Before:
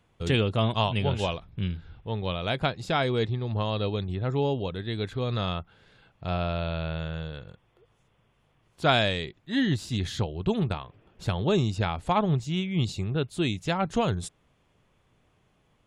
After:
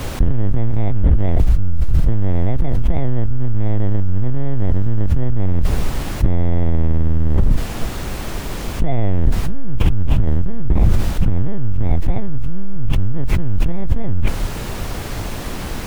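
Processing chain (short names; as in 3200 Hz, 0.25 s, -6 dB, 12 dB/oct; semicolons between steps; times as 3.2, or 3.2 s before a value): FFT order left unsorted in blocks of 32 samples; LPC vocoder at 8 kHz pitch kept; expander -54 dBFS; added noise white -53 dBFS; tilt -4.5 dB/oct; fast leveller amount 100%; gain -10.5 dB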